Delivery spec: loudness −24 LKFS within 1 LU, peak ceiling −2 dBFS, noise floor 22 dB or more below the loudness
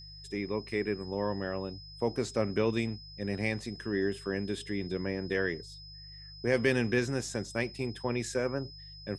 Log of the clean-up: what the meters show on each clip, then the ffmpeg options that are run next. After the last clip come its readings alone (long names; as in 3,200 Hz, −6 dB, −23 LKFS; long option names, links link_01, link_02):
mains hum 50 Hz; hum harmonics up to 150 Hz; level of the hum −50 dBFS; interfering tone 5,100 Hz; level of the tone −48 dBFS; integrated loudness −33.0 LKFS; sample peak −12.5 dBFS; target loudness −24.0 LKFS
→ -af "bandreject=frequency=50:width_type=h:width=4,bandreject=frequency=100:width_type=h:width=4,bandreject=frequency=150:width_type=h:width=4"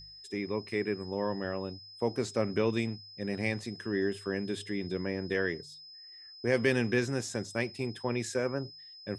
mains hum none found; interfering tone 5,100 Hz; level of the tone −48 dBFS
→ -af "bandreject=frequency=5100:width=30"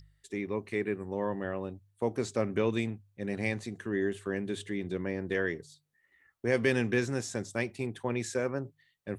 interfering tone none found; integrated loudness −33.0 LKFS; sample peak −12.5 dBFS; target loudness −24.0 LKFS
→ -af "volume=9dB"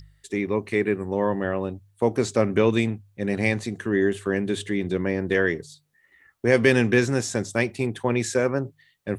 integrated loudness −24.0 LKFS; sample peak −3.5 dBFS; background noise floor −64 dBFS